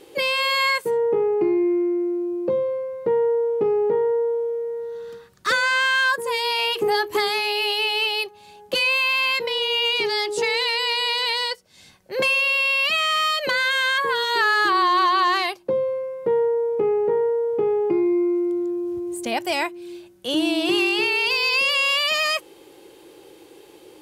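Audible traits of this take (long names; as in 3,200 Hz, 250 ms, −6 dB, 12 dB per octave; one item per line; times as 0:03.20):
background noise floor −49 dBFS
spectral slope +1.0 dB per octave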